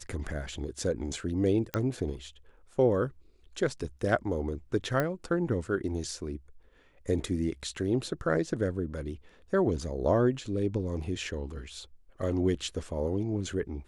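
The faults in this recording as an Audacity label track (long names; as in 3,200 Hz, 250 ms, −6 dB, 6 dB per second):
1.740000	1.740000	click −15 dBFS
5.000000	5.000000	click −15 dBFS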